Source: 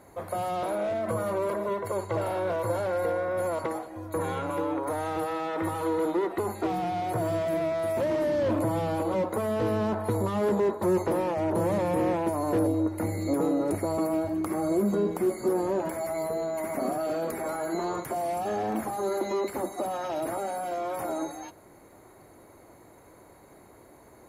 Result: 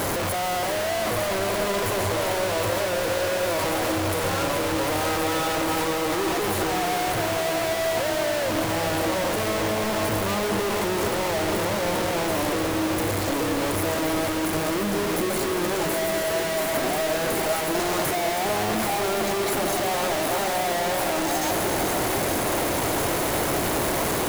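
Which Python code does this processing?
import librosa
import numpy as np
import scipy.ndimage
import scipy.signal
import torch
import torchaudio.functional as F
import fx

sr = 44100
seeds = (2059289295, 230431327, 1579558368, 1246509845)

y = np.sign(x) * np.sqrt(np.mean(np.square(x)))
y = fx.echo_diffused(y, sr, ms=467, feedback_pct=80, wet_db=-8.5)
y = y * librosa.db_to_amplitude(3.0)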